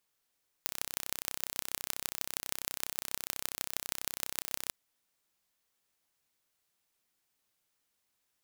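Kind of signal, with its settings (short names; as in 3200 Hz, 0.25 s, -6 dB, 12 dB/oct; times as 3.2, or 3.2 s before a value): pulse train 32.2/s, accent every 5, -4 dBFS 4.05 s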